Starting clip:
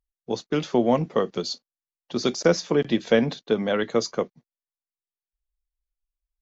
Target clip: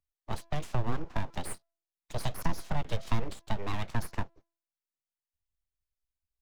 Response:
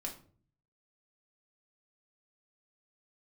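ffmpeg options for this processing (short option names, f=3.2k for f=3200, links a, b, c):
-filter_complex "[0:a]bandreject=f=335.8:t=h:w=4,bandreject=f=671.6:t=h:w=4,aeval=exprs='abs(val(0))':c=same,acrossover=split=190[a][b];[b]acompressor=threshold=-31dB:ratio=6[c];[a][c]amix=inputs=2:normalize=0,volume=-3.5dB"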